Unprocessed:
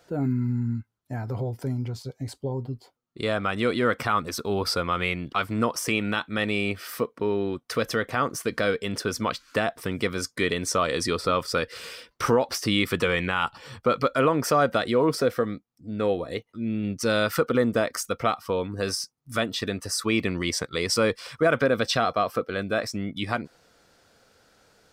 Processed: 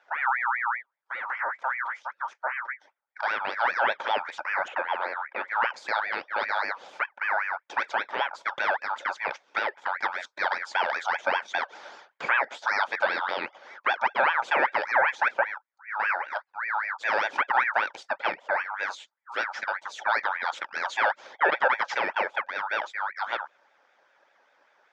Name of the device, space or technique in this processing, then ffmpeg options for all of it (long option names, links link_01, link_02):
voice changer toy: -filter_complex "[0:a]aeval=exprs='val(0)*sin(2*PI*1600*n/s+1600*0.35/5.1*sin(2*PI*5.1*n/s))':channel_layout=same,highpass=440,equalizer=frequency=560:width_type=q:width=4:gain=7,equalizer=frequency=870:width_type=q:width=4:gain=8,equalizer=frequency=1500:width_type=q:width=4:gain=5,equalizer=frequency=2800:width_type=q:width=4:gain=-9,equalizer=frequency=4100:width_type=q:width=4:gain=-8,lowpass=frequency=4600:width=0.5412,lowpass=frequency=4600:width=1.3066,deesser=0.6,asettb=1/sr,asplit=3[link_01][link_02][link_03];[link_01]atrim=end=4.684[link_04];[link_02]atrim=start=4.68:end=5.48,asetpts=PTS-STARTPTS,afade=type=in:duration=0.004:curve=qsin,afade=type=out:start_time=0.796:duration=0.004:curve=qsin,acrossover=split=270 3200:gain=0.158 1 0.0631[link_05][link_06][link_07];[link_05][link_06][link_07]amix=inputs=3:normalize=0[link_08];[link_03]atrim=start=5.476[link_09];[link_04][link_08]acrossfade=duration=0.004:curve1=hsin:curve2=qsin[link_10];[link_10][link_09]acrossfade=duration=0.004:curve1=qsin:curve2=hsin,volume=-1.5dB"